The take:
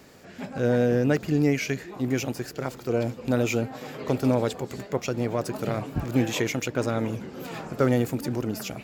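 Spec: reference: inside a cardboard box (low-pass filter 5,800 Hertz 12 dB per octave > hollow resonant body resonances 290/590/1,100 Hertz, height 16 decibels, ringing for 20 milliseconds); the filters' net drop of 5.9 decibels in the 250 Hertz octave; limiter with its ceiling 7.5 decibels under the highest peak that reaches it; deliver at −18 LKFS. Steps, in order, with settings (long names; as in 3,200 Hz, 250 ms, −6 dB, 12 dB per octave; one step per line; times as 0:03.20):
parametric band 250 Hz −7 dB
brickwall limiter −19.5 dBFS
low-pass filter 5,800 Hz 12 dB per octave
hollow resonant body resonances 290/590/1,100 Hz, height 16 dB, ringing for 20 ms
level +3 dB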